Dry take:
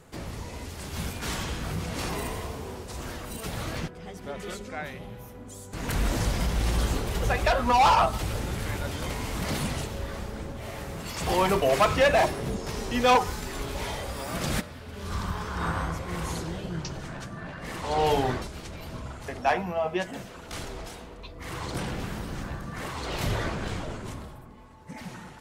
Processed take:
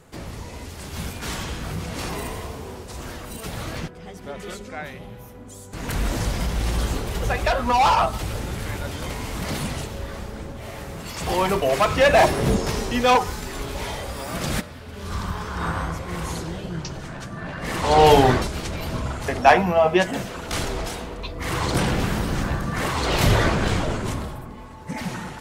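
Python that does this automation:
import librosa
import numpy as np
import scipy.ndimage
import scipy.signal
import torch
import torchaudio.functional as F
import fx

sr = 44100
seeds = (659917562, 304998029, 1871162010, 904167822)

y = fx.gain(x, sr, db=fx.line((11.88, 2.0), (12.52, 11.5), (13.03, 3.0), (17.17, 3.0), (17.87, 10.5)))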